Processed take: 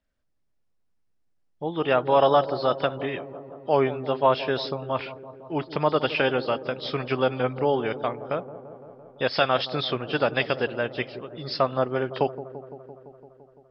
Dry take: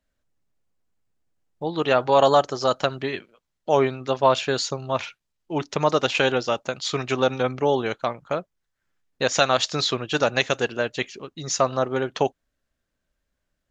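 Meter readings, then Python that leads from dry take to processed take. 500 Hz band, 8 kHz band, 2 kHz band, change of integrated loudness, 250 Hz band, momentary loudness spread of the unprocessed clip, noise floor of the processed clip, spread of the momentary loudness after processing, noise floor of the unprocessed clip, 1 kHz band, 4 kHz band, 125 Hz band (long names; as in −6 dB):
−1.5 dB, can't be measured, −2.5 dB, −2.0 dB, −1.5 dB, 11 LU, −69 dBFS, 16 LU, −79 dBFS, −2.0 dB, −4.5 dB, −1.5 dB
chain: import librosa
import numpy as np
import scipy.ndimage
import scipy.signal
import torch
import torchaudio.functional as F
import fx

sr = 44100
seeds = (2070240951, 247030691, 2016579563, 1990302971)

y = fx.freq_compress(x, sr, knee_hz=2900.0, ratio=1.5)
y = fx.high_shelf(y, sr, hz=6700.0, db=-7.0)
y = fx.echo_wet_lowpass(y, sr, ms=170, feedback_pct=74, hz=730.0, wet_db=-12.5)
y = y * 10.0 ** (-2.0 / 20.0)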